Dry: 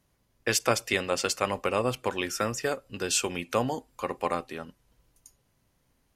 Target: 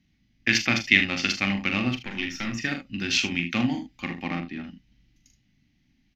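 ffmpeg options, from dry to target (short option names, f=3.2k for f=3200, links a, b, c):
-filter_complex "[0:a]bandreject=f=1k:w=6.8,aecho=1:1:41|76:0.501|0.335,asettb=1/sr,asplit=3[a][b][c];[a]atrim=end=1.964[d];[b]atrim=start=1.96:end=2.55,asetpts=PTS-STARTPTS,afade=t=in:d=0.004:c=qsin,afade=t=out:st=0.586:d=0.004:c=qsin,aeval=exprs='(tanh(14.1*val(0)+0.55)-tanh(0.55))/14.1':c=same[e];[c]atrim=start=2.546[f];[d][e]acrossfade=d=0.004:c1=hsin:c2=qsin[g];[g][f]acrossfade=d=0.004:c1=qsin:c2=hsin,asettb=1/sr,asplit=3[h][i][j];[h]atrim=end=4.234[k];[i]atrim=start=4.23:end=4.64,asetpts=PTS-STARTPTS,afade=t=in:d=0.004:c=qsin,afade=t=out:st=0.406:d=0.004:c=qsin,aemphasis=mode=reproduction:type=75kf[l];[j]atrim=start=4.636[m];[k][l]acrossfade=d=0.004:c1=hsin:c2=qsin[n];[n][m]acrossfade=d=0.004:c1=qsin:c2=hsin,asplit=2[o][p];[p]adynamicsmooth=sensitivity=4:basefreq=880,volume=0dB[q];[o][q]amix=inputs=2:normalize=0,firequalizer=gain_entry='entry(120,0);entry(200,8);entry(310,4);entry(440,-19);entry(760,-6);entry(1300,-6);entry(2000,11);entry(6200,2);entry(8800,-28);entry(13000,-12)':delay=0.05:min_phase=1,volume=-4.5dB"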